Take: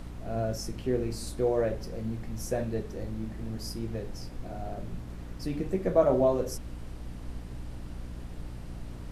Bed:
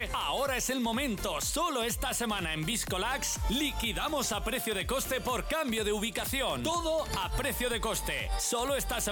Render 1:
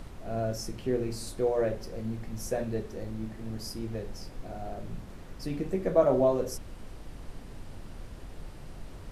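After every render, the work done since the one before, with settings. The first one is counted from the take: hum notches 60/120/180/240/300/360 Hz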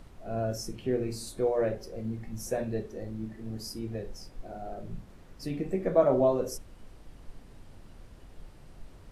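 noise print and reduce 7 dB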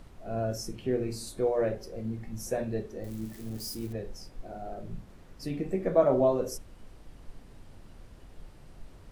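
3.04–3.93 s: zero-crossing glitches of -37.5 dBFS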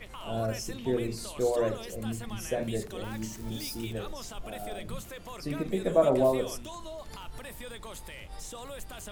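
add bed -12 dB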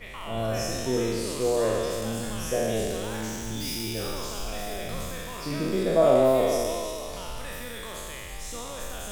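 spectral sustain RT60 2.34 s; feedback echo behind a high-pass 336 ms, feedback 65%, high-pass 2.9 kHz, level -9 dB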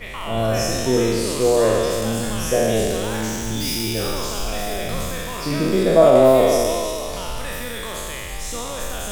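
trim +8 dB; peak limiter -2 dBFS, peak gain reduction 3 dB

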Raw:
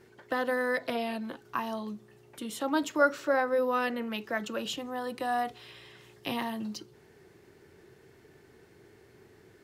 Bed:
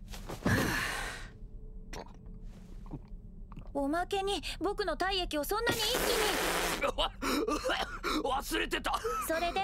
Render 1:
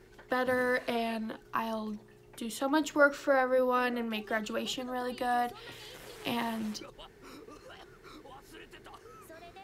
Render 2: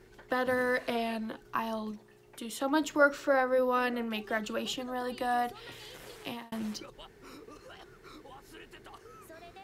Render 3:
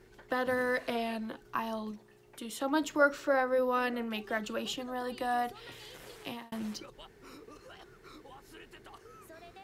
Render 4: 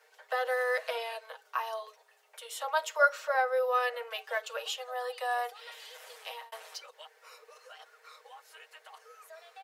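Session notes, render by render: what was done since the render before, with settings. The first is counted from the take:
add bed -19 dB
1.91–2.61 s: bass shelf 230 Hz -6.5 dB; 6.11–6.52 s: fade out
trim -1.5 dB
steep high-pass 480 Hz 72 dB/octave; comb 6.4 ms, depth 68%

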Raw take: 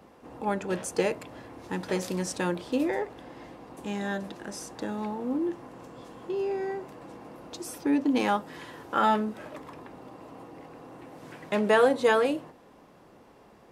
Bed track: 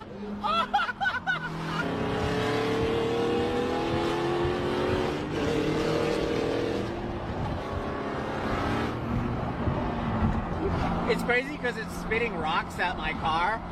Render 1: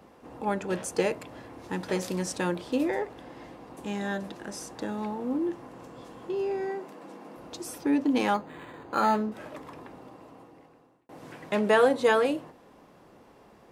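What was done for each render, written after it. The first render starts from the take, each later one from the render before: 6.68–7.37 s: brick-wall FIR high-pass 150 Hz; 8.34–9.32 s: decimation joined by straight lines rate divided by 8×; 9.86–11.09 s: fade out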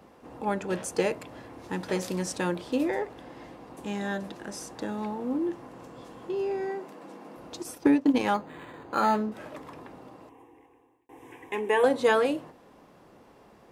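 7.61–8.27 s: transient shaper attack +8 dB, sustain -11 dB; 10.29–11.84 s: static phaser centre 910 Hz, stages 8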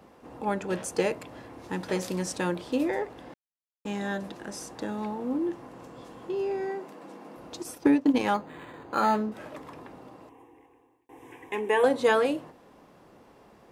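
3.34–3.85 s: mute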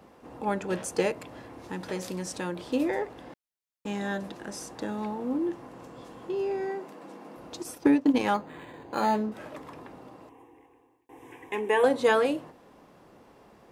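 1.11–2.58 s: compression 1.5:1, threshold -36 dBFS; 8.61–9.24 s: peaking EQ 1.3 kHz -11 dB 0.28 oct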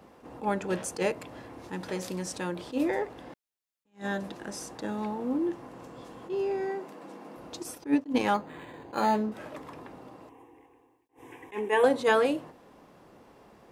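attacks held to a fixed rise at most 280 dB/s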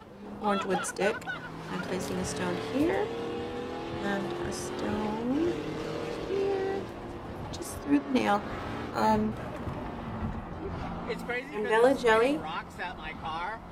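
add bed track -8.5 dB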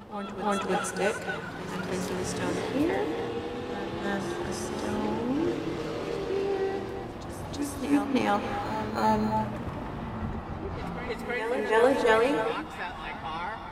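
reverse echo 323 ms -9 dB; gated-style reverb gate 310 ms rising, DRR 7.5 dB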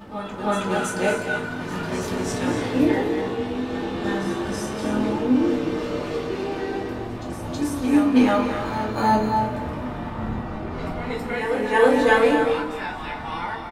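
delay 228 ms -12 dB; simulated room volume 280 m³, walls furnished, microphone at 2.6 m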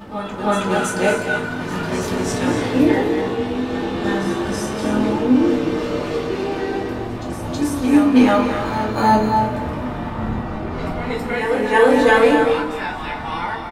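trim +4.5 dB; peak limiter -3 dBFS, peak gain reduction 2.5 dB

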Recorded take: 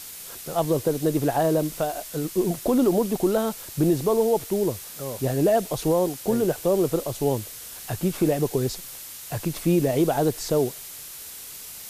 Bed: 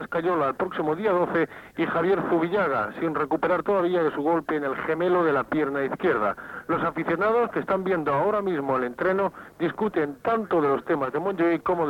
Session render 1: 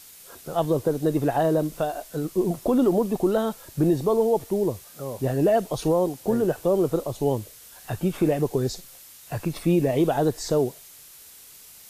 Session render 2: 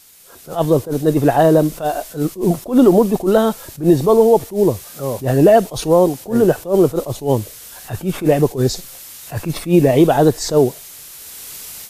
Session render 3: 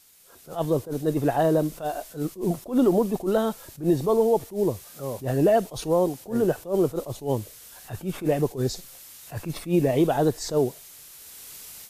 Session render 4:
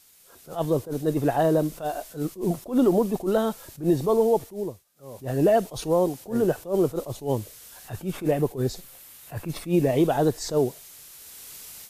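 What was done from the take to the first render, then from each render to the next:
noise print and reduce 8 dB
level rider gain up to 15 dB; attacks held to a fixed rise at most 210 dB/s
trim -9.5 dB
4.35–5.45 s: dip -23.5 dB, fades 0.49 s; 8.31–9.49 s: peaking EQ 5.8 kHz -5.5 dB 1.2 oct

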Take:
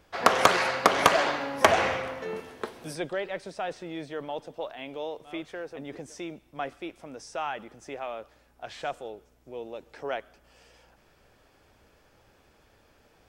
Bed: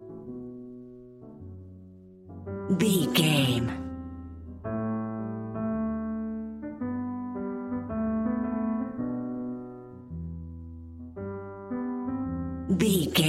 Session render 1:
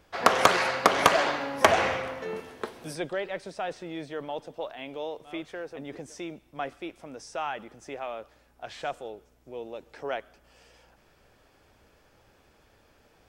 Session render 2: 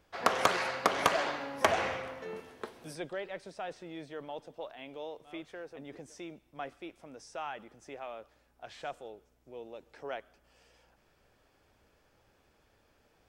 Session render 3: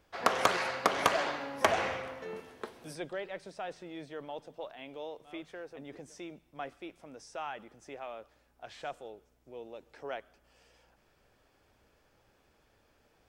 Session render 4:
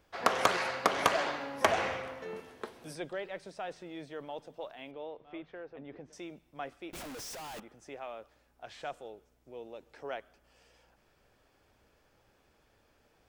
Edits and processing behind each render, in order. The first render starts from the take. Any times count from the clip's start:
no audible change
trim -7 dB
de-hum 82.81 Hz, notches 2
4.91–6.13 s: distance through air 280 m; 6.93–7.60 s: one-bit comparator

